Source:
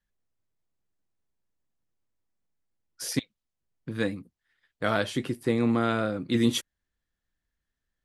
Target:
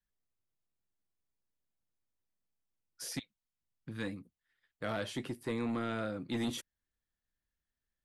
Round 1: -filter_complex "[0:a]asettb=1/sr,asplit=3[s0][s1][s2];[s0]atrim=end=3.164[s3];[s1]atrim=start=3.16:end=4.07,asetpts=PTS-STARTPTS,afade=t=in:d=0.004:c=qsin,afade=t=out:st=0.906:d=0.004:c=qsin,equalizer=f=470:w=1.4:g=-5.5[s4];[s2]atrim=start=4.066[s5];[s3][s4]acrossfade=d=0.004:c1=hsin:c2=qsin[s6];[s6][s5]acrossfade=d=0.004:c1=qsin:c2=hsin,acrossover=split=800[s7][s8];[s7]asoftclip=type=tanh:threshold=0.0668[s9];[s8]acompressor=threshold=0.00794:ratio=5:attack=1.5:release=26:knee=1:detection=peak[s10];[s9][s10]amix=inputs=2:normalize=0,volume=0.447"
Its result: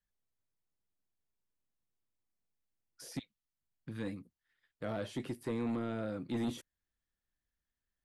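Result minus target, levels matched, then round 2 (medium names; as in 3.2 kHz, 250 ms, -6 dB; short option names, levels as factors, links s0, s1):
compression: peak gain reduction +8.5 dB
-filter_complex "[0:a]asettb=1/sr,asplit=3[s0][s1][s2];[s0]atrim=end=3.164[s3];[s1]atrim=start=3.16:end=4.07,asetpts=PTS-STARTPTS,afade=t=in:d=0.004:c=qsin,afade=t=out:st=0.906:d=0.004:c=qsin,equalizer=f=470:w=1.4:g=-5.5[s4];[s2]atrim=start=4.066[s5];[s3][s4]acrossfade=d=0.004:c1=hsin:c2=qsin[s6];[s6][s5]acrossfade=d=0.004:c1=qsin:c2=hsin,acrossover=split=800[s7][s8];[s7]asoftclip=type=tanh:threshold=0.0668[s9];[s8]acompressor=threshold=0.0266:ratio=5:attack=1.5:release=26:knee=1:detection=peak[s10];[s9][s10]amix=inputs=2:normalize=0,volume=0.447"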